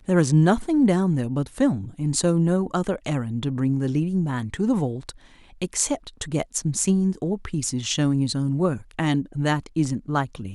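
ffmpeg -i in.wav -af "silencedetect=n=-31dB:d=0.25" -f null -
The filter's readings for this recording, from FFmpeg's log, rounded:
silence_start: 5.10
silence_end: 5.62 | silence_duration: 0.52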